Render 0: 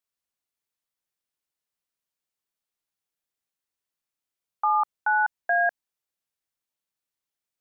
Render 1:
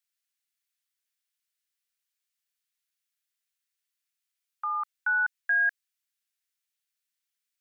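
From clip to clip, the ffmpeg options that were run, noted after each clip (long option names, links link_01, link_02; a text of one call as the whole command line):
ffmpeg -i in.wav -af "highpass=frequency=1500:width=0.5412,highpass=frequency=1500:width=1.3066,volume=3dB" out.wav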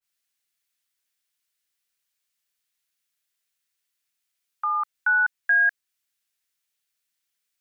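ffmpeg -i in.wav -af "adynamicequalizer=threshold=0.0141:dfrequency=1700:dqfactor=0.7:tfrequency=1700:tqfactor=0.7:attack=5:release=100:ratio=0.375:range=3:mode=cutabove:tftype=highshelf,volume=5.5dB" out.wav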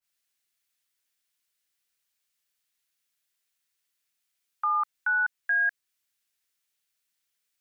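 ffmpeg -i in.wav -af "alimiter=limit=-20dB:level=0:latency=1:release=53" out.wav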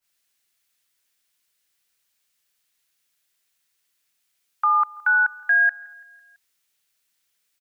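ffmpeg -i in.wav -af "aecho=1:1:167|334|501|668:0.0668|0.0388|0.0225|0.013,volume=7dB" out.wav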